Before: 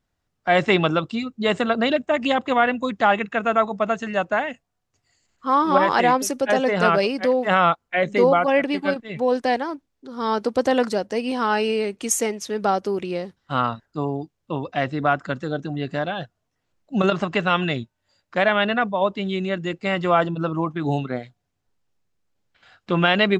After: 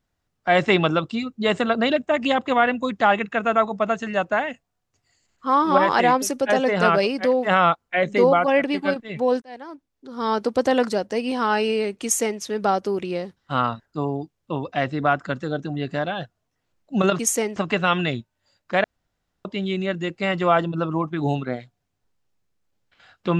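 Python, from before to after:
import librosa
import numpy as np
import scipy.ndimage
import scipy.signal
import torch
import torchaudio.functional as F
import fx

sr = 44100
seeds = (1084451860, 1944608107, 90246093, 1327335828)

y = fx.edit(x, sr, fx.fade_in_span(start_s=9.42, length_s=0.77),
    fx.duplicate(start_s=12.03, length_s=0.37, to_s=17.19),
    fx.room_tone_fill(start_s=18.47, length_s=0.61), tone=tone)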